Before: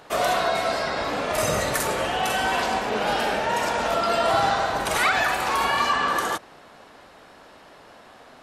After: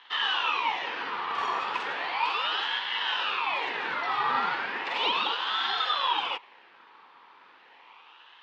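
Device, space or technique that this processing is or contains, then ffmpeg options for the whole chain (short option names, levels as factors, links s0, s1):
voice changer toy: -af "aeval=exprs='val(0)*sin(2*PI*1500*n/s+1500*0.65/0.35*sin(2*PI*0.35*n/s))':c=same,highpass=600,equalizer=f=630:t=q:w=4:g=-10,equalizer=f=940:t=q:w=4:g=7,equalizer=f=1500:t=q:w=4:g=-4,equalizer=f=2100:t=q:w=4:g=-5,lowpass=f=3500:w=0.5412,lowpass=f=3500:w=1.3066"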